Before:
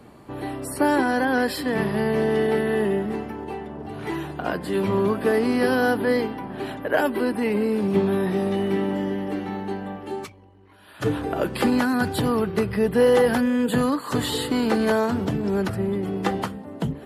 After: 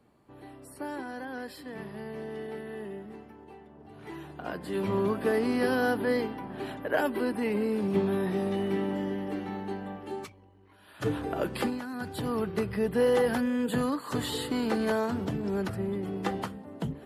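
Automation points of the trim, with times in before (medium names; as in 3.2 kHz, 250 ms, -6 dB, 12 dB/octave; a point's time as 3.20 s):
3.71 s -17 dB
4.94 s -6 dB
11.60 s -6 dB
11.81 s -17 dB
12.41 s -7 dB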